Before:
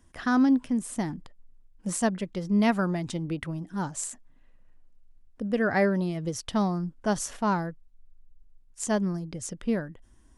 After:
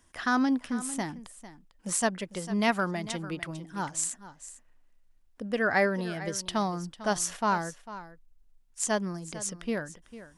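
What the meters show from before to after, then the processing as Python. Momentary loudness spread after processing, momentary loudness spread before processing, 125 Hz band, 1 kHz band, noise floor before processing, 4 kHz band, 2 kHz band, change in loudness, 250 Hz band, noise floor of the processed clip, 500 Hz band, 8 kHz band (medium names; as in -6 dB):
17 LU, 13 LU, -6.0 dB, +1.0 dB, -57 dBFS, +3.5 dB, +2.5 dB, -2.0 dB, -5.5 dB, -62 dBFS, -1.5 dB, +3.5 dB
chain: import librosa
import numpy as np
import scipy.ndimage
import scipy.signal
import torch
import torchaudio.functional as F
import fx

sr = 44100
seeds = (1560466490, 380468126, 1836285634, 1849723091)

p1 = fx.low_shelf(x, sr, hz=490.0, db=-11.0)
p2 = p1 + fx.echo_single(p1, sr, ms=449, db=-15.0, dry=0)
y = F.gain(torch.from_numpy(p2), 3.5).numpy()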